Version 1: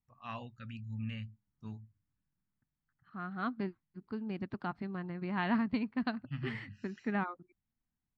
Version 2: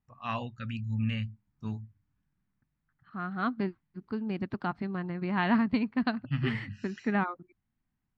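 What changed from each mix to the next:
first voice +9.0 dB
second voice +5.5 dB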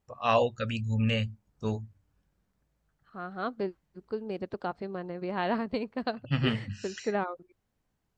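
first voice +10.5 dB
master: add octave-band graphic EQ 125/250/500/1,000/2,000/8,000 Hz −8/−8/+12/−4/−6/+7 dB

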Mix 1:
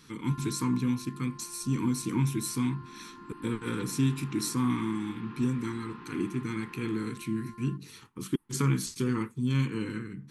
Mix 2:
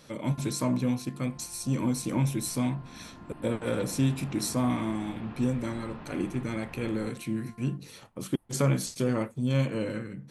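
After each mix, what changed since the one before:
first sound −6.5 dB
second sound: remove high-pass filter 200 Hz 12 dB per octave
master: remove Chebyshev band-stop filter 390–1,000 Hz, order 2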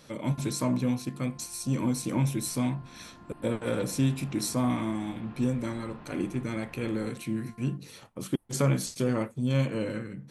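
second sound −4.5 dB

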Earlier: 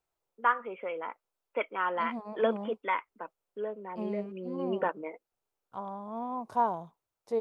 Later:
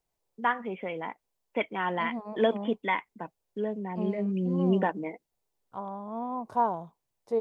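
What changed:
first voice: remove loudspeaker in its box 470–2,800 Hz, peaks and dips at 520 Hz +4 dB, 760 Hz −7 dB, 1,300 Hz +9 dB, 1,900 Hz −7 dB
second voice: add tilt shelving filter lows +3 dB, about 1,400 Hz

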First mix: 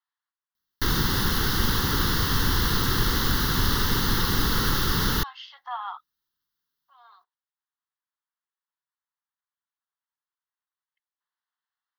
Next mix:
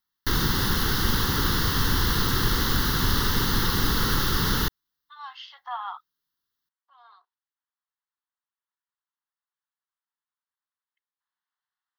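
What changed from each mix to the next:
background: entry −0.55 s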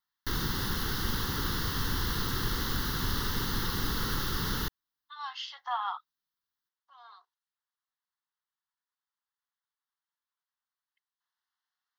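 speech: remove high-frequency loss of the air 150 metres
background −8.0 dB

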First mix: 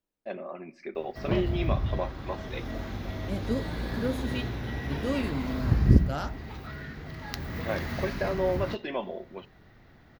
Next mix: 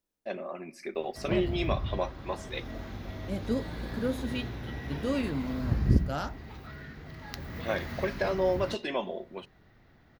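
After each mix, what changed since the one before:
first voice: remove high-frequency loss of the air 200 metres
background −4.5 dB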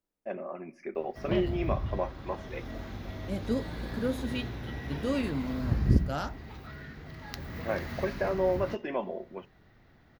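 first voice: add moving average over 11 samples

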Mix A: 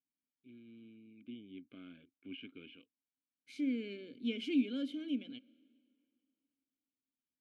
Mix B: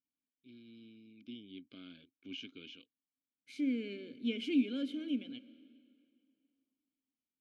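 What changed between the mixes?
first voice: remove low-pass filter 2,600 Hz 24 dB per octave
second voice: send +9.0 dB

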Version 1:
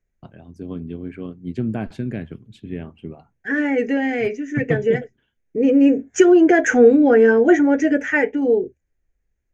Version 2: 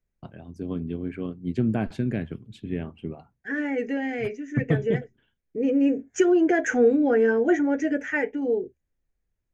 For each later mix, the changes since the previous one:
second voice −7.5 dB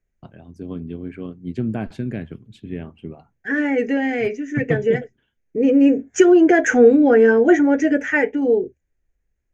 second voice +7.5 dB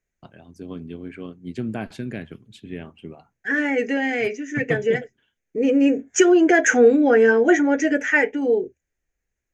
master: add spectral tilt +2 dB per octave

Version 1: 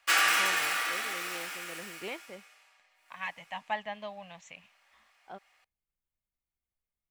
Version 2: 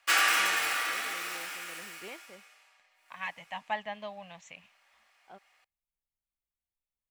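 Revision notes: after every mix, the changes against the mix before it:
first voice −6.0 dB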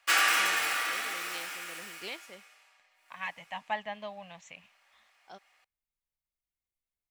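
first voice: remove high-frequency loss of the air 480 metres

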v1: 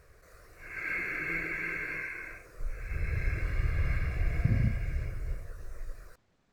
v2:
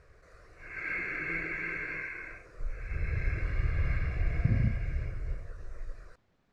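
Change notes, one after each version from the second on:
master: add high-frequency loss of the air 84 metres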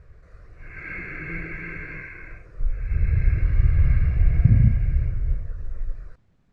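speech: remove high-frequency loss of the air 110 metres
master: add bass and treble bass +12 dB, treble −6 dB

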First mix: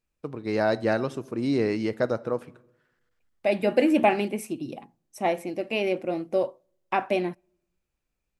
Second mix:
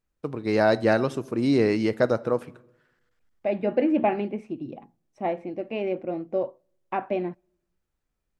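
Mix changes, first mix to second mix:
first voice +3.5 dB
second voice: add head-to-tape spacing loss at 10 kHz 35 dB

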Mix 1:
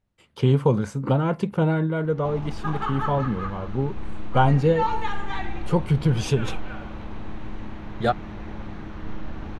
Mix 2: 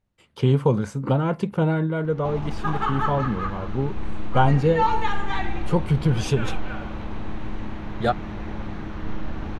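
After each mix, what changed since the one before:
background +3.5 dB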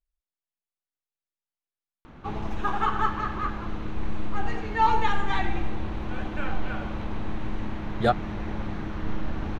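first voice: muted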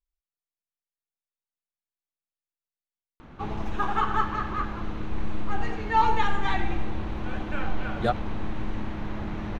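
speech −3.5 dB
background: entry +1.15 s

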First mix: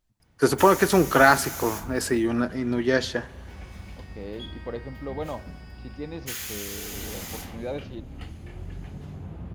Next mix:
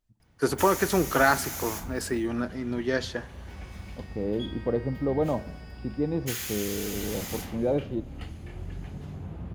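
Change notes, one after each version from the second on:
first voice −5.0 dB
second voice: add tilt shelving filter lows +10 dB, about 1,200 Hz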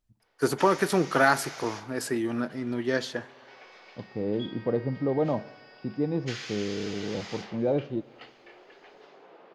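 background: add elliptic band-pass filter 430–5,100 Hz, stop band 70 dB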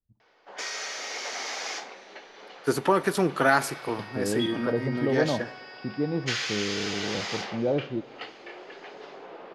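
first voice: entry +2.25 s
background +9.0 dB

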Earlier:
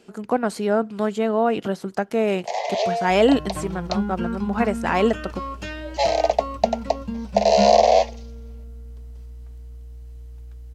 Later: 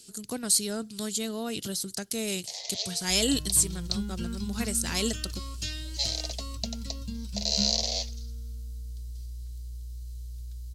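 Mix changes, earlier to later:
speech: add parametric band 10,000 Hz +9.5 dB 0.97 octaves
first sound −7.0 dB
master: add drawn EQ curve 110 Hz 0 dB, 200 Hz −9 dB, 310 Hz −10 dB, 800 Hz −21 dB, 2,600 Hz −6 dB, 4,100 Hz +10 dB

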